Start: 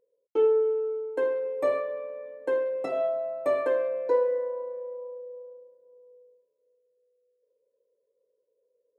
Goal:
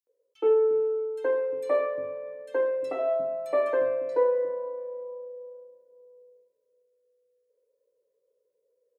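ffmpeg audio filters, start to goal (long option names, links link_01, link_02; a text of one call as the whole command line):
ffmpeg -i in.wav -filter_complex "[0:a]acrossover=split=240|3100[link_01][link_02][link_03];[link_02]adelay=70[link_04];[link_01]adelay=350[link_05];[link_05][link_04][link_03]amix=inputs=3:normalize=0,volume=1dB" out.wav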